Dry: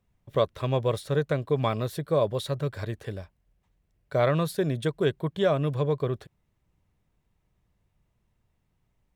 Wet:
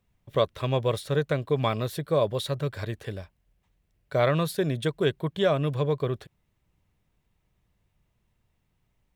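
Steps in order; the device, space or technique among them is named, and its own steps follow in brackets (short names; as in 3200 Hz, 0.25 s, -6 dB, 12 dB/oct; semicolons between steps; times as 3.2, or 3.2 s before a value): presence and air boost (bell 2900 Hz +3.5 dB 1.5 oct; high shelf 11000 Hz +4 dB)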